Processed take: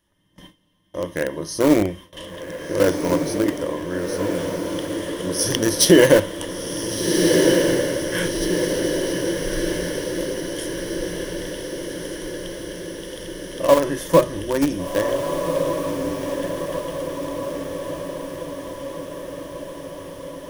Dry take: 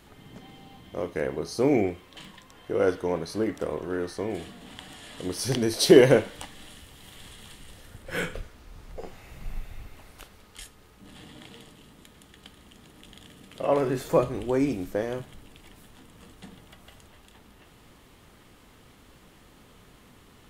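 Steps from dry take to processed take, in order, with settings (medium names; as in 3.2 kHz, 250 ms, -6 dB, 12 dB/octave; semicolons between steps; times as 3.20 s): rippled EQ curve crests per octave 1.2, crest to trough 11 dB; in parallel at -6 dB: small samples zeroed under -17 dBFS; on the sum: band-stop 790 Hz, Q 12; on a send: echo that smears into a reverb 1497 ms, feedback 64%, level -5 dB; on the sum: gate with hold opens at -32 dBFS; treble shelf 6.8 kHz +7.5 dB; loudness maximiser +3.5 dB; trim -1 dB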